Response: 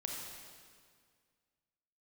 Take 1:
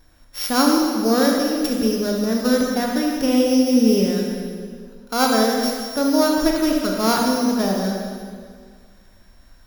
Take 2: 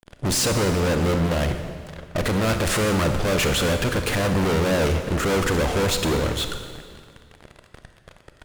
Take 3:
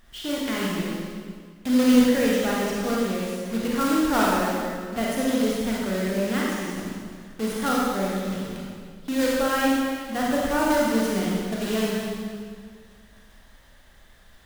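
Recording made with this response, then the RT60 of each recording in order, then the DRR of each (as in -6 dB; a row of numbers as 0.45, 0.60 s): 1; 1.9, 1.9, 1.9 s; -0.5, 6.5, -5.0 dB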